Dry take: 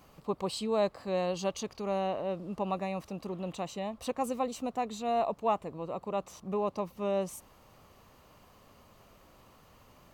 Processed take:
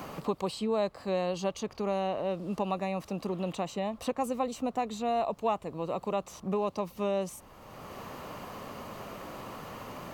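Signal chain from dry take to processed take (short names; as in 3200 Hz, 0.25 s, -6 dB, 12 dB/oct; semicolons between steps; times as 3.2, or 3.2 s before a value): three-band squash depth 70%; gain +1 dB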